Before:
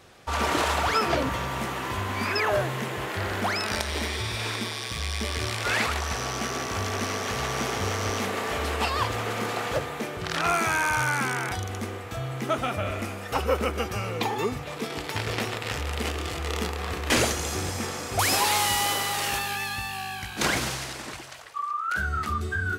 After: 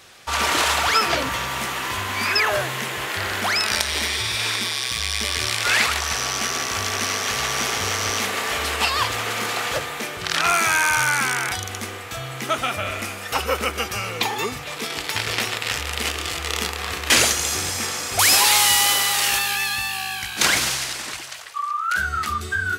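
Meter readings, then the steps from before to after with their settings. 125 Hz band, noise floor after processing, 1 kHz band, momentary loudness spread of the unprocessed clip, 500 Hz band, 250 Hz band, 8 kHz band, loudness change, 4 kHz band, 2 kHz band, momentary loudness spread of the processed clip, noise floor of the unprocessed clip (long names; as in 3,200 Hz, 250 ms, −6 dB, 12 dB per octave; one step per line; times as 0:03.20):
−2.5 dB, −33 dBFS, +3.5 dB, 9 LU, 0.0 dB, −1.5 dB, +10.0 dB, +6.5 dB, +9.5 dB, +7.0 dB, 10 LU, −37 dBFS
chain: tilt shelving filter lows −6.5 dB, about 1,100 Hz
level +4 dB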